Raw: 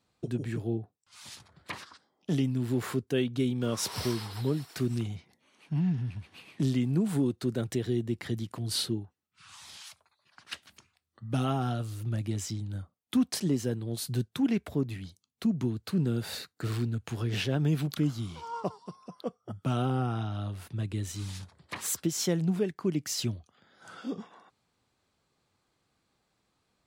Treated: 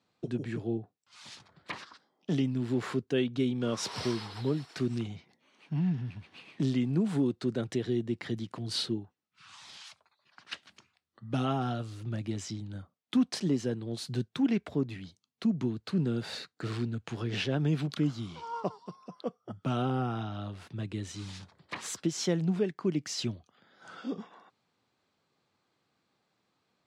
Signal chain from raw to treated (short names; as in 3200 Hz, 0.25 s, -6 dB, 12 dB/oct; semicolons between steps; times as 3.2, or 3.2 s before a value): BPF 130–5800 Hz